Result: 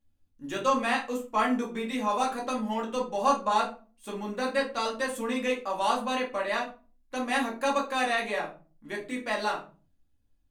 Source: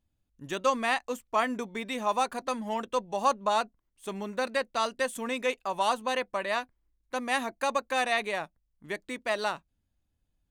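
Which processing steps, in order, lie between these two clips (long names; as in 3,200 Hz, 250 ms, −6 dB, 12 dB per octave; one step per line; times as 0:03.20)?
rectangular room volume 190 cubic metres, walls furnished, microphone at 2.3 metres
level −4 dB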